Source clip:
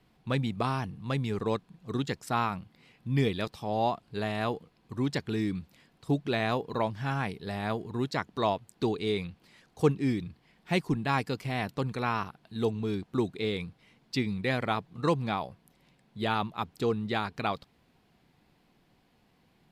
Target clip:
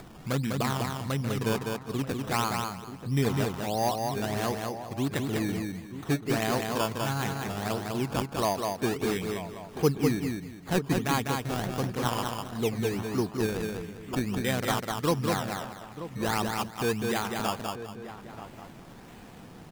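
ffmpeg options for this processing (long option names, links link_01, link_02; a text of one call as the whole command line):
ffmpeg -i in.wav -filter_complex "[0:a]acrusher=samples=15:mix=1:aa=0.000001:lfo=1:lforange=15:lforate=1.5,asplit=2[link_01][link_02];[link_02]aecho=0:1:200|400|600:0.631|0.114|0.0204[link_03];[link_01][link_03]amix=inputs=2:normalize=0,acompressor=mode=upward:threshold=-32dB:ratio=2.5,asplit=2[link_04][link_05];[link_05]adelay=932.9,volume=-12dB,highshelf=frequency=4000:gain=-21[link_06];[link_04][link_06]amix=inputs=2:normalize=0" out.wav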